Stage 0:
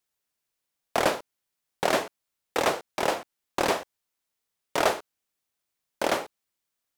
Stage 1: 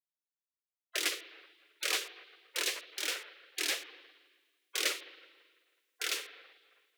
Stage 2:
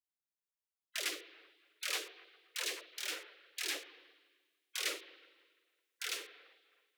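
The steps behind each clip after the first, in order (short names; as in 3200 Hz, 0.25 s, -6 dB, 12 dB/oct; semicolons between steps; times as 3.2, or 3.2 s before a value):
spring tank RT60 1.6 s, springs 39/54 ms, chirp 70 ms, DRR 12.5 dB; spectral gate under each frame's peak -15 dB weak; frequency shift +290 Hz
dispersion lows, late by 0.122 s, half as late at 350 Hz; gain -5 dB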